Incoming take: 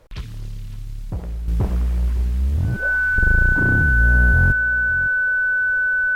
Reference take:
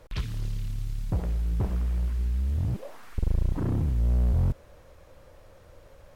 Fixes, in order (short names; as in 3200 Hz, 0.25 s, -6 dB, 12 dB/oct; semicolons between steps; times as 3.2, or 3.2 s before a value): notch 1500 Hz, Q 30; inverse comb 0.558 s -16 dB; gain correction -7 dB, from 1.48